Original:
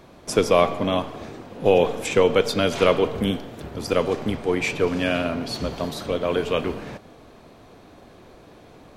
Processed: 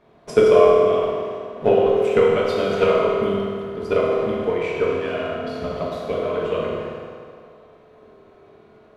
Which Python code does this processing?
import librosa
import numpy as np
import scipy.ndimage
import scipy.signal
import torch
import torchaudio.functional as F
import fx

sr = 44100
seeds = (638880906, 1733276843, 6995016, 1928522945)

y = fx.bass_treble(x, sr, bass_db=-4, treble_db=-14)
y = fx.transient(y, sr, attack_db=12, sustain_db=8)
y = fx.rev_fdn(y, sr, rt60_s=2.3, lf_ratio=0.75, hf_ratio=0.75, size_ms=14.0, drr_db=-5.5)
y = F.gain(torch.from_numpy(y), -11.0).numpy()